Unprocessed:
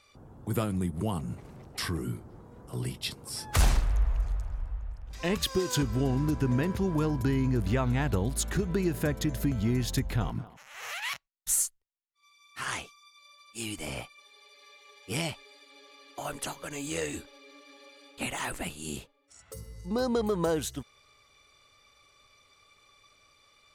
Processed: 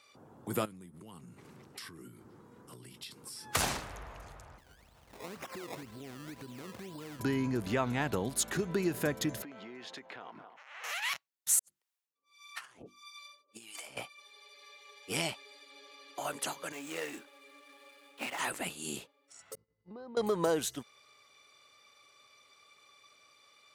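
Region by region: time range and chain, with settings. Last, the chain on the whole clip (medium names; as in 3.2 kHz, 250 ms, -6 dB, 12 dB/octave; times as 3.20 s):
0.65–3.55 s: peaking EQ 660 Hz -9.5 dB 0.81 oct + compression 16:1, threshold -41 dBFS
4.58–7.20 s: compression 16:1, threshold -37 dBFS + decimation with a swept rate 20× 2 Hz
9.42–10.84 s: band-pass 440–2900 Hz + compression, threshold -41 dBFS
11.59–13.97 s: hum notches 50/100/150/200/250/300/350 Hz + compressor with a negative ratio -42 dBFS, ratio -0.5 + harmonic tremolo 1.6 Hz, depth 100%, crossover 550 Hz
16.72–18.39 s: median filter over 9 samples + high-pass 230 Hz + peaking EQ 430 Hz -5 dB 1.3 oct
19.55–20.17 s: expander -31 dBFS + compression 8:1, threshold -41 dBFS + distance through air 380 m
whole clip: high-pass 110 Hz 12 dB/octave; bass shelf 160 Hz -12 dB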